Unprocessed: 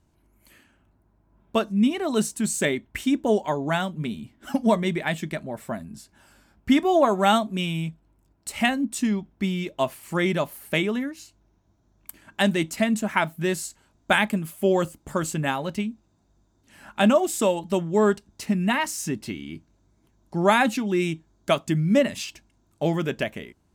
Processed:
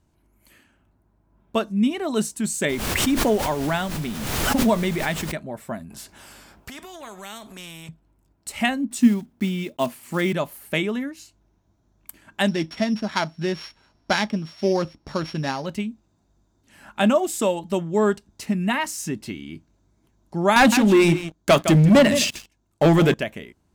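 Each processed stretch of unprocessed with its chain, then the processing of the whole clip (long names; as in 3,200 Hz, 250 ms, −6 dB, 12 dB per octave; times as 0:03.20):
0:02.68–0:05.31: background noise pink −39 dBFS + background raised ahead of every attack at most 30 dB per second
0:05.90–0:07.89: downward compressor 4 to 1, threshold −34 dBFS + every bin compressed towards the loudest bin 2 to 1
0:08.91–0:10.33: one scale factor per block 5 bits + high-pass filter 74 Hz + parametric band 240 Hz +12 dB 0.21 octaves
0:12.48–0:15.66: samples sorted by size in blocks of 8 samples + high-frequency loss of the air 110 metres + one half of a high-frequency compander encoder only
0:20.56–0:23.14: mains-hum notches 60/120/180/240/300 Hz + single-tap delay 161 ms −15 dB + leveller curve on the samples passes 3
whole clip: no processing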